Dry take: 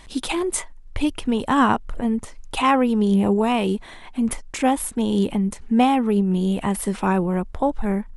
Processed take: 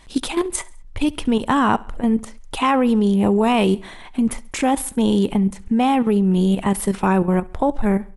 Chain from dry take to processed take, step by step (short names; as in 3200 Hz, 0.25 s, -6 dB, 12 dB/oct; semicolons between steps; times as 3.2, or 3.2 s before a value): level quantiser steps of 11 dB; on a send: feedback echo 68 ms, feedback 49%, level -22.5 dB; on the sum: gain +6 dB